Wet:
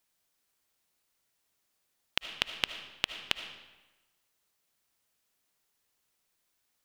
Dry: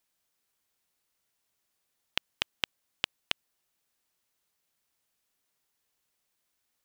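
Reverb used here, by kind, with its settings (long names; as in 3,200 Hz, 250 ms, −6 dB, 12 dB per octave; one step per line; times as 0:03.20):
comb and all-pass reverb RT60 1.1 s, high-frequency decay 0.85×, pre-delay 35 ms, DRR 8.5 dB
level +1 dB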